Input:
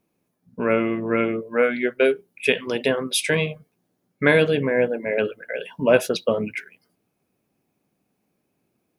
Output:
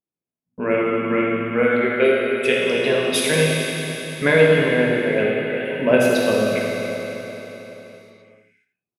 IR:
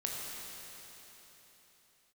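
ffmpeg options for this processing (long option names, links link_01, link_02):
-filter_complex "[0:a]agate=range=-23dB:threshold=-48dB:ratio=16:detection=peak,aecho=1:1:84:0.316[link_01];[1:a]atrim=start_sample=2205[link_02];[link_01][link_02]afir=irnorm=-1:irlink=0"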